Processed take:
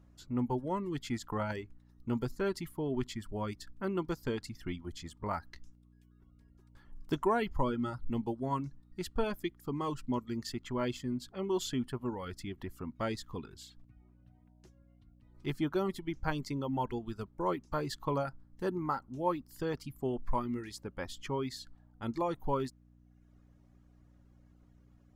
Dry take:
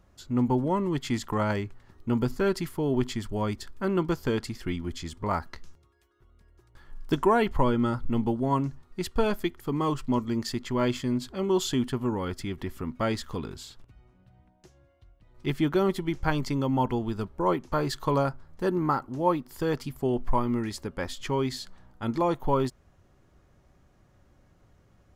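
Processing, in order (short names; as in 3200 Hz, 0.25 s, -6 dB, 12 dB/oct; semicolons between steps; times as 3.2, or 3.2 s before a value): reverb removal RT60 0.85 s; buzz 60 Hz, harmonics 5, -55 dBFS -4 dB/oct; gain -7 dB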